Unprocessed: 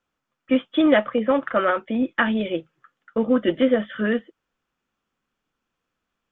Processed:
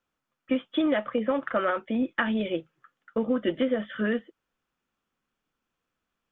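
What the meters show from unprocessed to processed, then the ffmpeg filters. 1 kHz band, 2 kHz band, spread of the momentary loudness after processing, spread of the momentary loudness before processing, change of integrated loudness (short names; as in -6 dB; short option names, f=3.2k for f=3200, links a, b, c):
-6.0 dB, -6.0 dB, 6 LU, 9 LU, -6.0 dB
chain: -af "acompressor=threshold=-18dB:ratio=6,volume=-3dB"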